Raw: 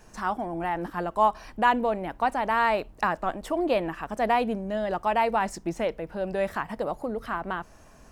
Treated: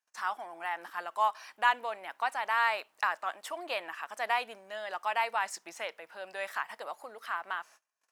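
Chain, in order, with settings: gate -47 dBFS, range -31 dB; high-pass 1.2 kHz 12 dB/octave

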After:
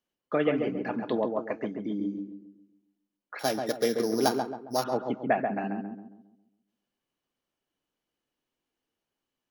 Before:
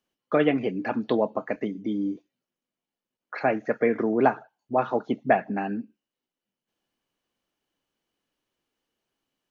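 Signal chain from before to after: 3.39–4.84 s: sorted samples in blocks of 8 samples; vibrato 4.4 Hz 6 cents; filtered feedback delay 136 ms, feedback 43%, low-pass 1.3 kHz, level -4 dB; trim -5 dB

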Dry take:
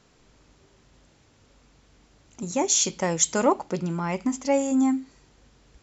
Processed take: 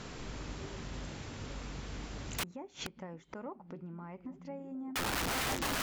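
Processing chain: compression 2:1, threshold -40 dBFS, peak gain reduction 14 dB; low-pass that closes with the level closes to 1.7 kHz, closed at -33.5 dBFS; treble shelf 5.2 kHz -8 dB; repeats whose band climbs or falls 574 ms, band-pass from 170 Hz, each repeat 0.7 oct, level -8 dB; 2.43–4.96 s: inverted gate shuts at -40 dBFS, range -25 dB; integer overflow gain 45 dB; peaking EQ 570 Hz -2.5 dB 1.9 oct; trim +16.5 dB

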